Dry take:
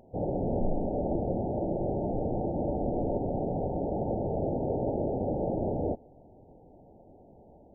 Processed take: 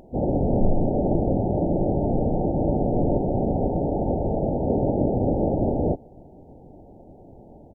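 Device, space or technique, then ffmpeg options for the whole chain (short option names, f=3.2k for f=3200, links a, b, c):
octave pedal: -filter_complex "[0:a]asettb=1/sr,asplit=3[a][b][c];[a]atrim=end=3.864[d];[b]atrim=start=3.86:end=4.67,asetpts=PTS-STARTPTS,afade=t=in:d=0.004:c=qsin,afade=t=out:st=0.806:d=0.004:c=qsin,equalizer=f=280:t=o:w=0.78:g=-5[e];[c]atrim=start=4.666[f];[d][e]acrossfade=d=0.004:c1=hsin:c2=qsin[g];[g][f]acrossfade=d=0.004:c1=qsin:c2=hsin,asplit=2[h][i];[i]asetrate=22050,aresample=44100,atempo=2,volume=-2dB[j];[h][j]amix=inputs=2:normalize=0,volume=6dB"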